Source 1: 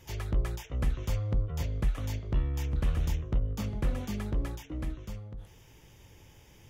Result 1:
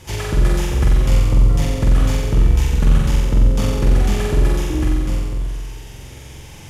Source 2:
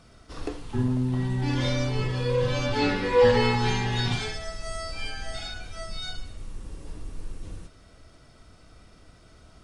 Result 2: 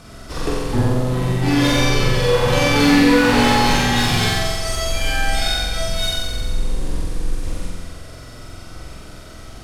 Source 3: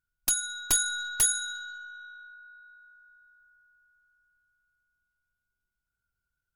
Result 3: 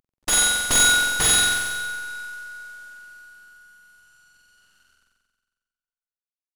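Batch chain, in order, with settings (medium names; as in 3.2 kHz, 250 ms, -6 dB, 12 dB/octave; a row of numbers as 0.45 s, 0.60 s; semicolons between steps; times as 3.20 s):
CVSD coder 64 kbps; saturation -25.5 dBFS; flutter echo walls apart 7.8 m, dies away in 1.5 s; normalise loudness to -18 LUFS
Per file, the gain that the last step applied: +13.0 dB, +11.5 dB, +10.0 dB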